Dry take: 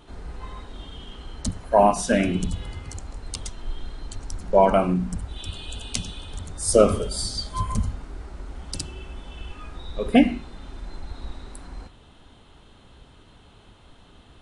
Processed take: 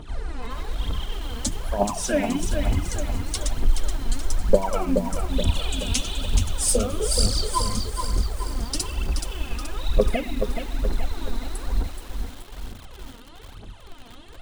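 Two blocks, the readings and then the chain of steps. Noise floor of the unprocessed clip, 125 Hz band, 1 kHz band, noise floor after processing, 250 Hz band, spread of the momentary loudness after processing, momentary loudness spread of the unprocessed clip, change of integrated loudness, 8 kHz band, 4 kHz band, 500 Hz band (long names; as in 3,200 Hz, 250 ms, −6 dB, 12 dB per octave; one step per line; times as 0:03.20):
−52 dBFS, +3.5 dB, −5.5 dB, −43 dBFS, −4.0 dB, 18 LU, 22 LU, −3.0 dB, +4.5 dB, +4.5 dB, −3.5 dB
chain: downward compressor 12 to 1, threshold −25 dBFS, peak gain reduction 16 dB
phase shifter 1.1 Hz, delay 4.5 ms, feedback 78%
feedback echo at a low word length 426 ms, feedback 55%, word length 7 bits, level −6 dB
level +2 dB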